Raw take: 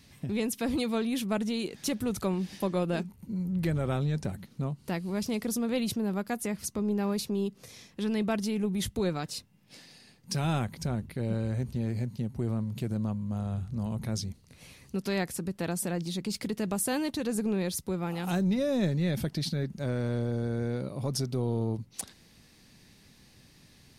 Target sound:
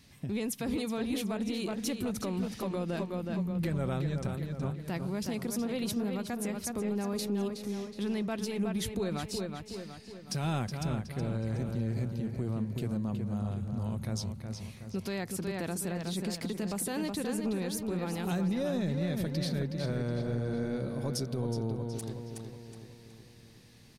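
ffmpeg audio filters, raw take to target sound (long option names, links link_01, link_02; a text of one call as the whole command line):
ffmpeg -i in.wav -filter_complex "[0:a]asplit=2[link_01][link_02];[link_02]adelay=369,lowpass=frequency=5000:poles=1,volume=-6dB,asplit=2[link_03][link_04];[link_04]adelay=369,lowpass=frequency=5000:poles=1,volume=0.52,asplit=2[link_05][link_06];[link_06]adelay=369,lowpass=frequency=5000:poles=1,volume=0.52,asplit=2[link_07][link_08];[link_08]adelay=369,lowpass=frequency=5000:poles=1,volume=0.52,asplit=2[link_09][link_10];[link_10]adelay=369,lowpass=frequency=5000:poles=1,volume=0.52,asplit=2[link_11][link_12];[link_12]adelay=369,lowpass=frequency=5000:poles=1,volume=0.52[link_13];[link_03][link_05][link_07][link_09][link_11][link_13]amix=inputs=6:normalize=0[link_14];[link_01][link_14]amix=inputs=2:normalize=0,alimiter=limit=-21.5dB:level=0:latency=1:release=71,volume=-2dB" out.wav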